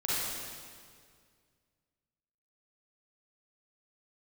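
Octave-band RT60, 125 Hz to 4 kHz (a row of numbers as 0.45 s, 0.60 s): 2.6 s, 2.3 s, 2.1 s, 1.9 s, 1.8 s, 1.8 s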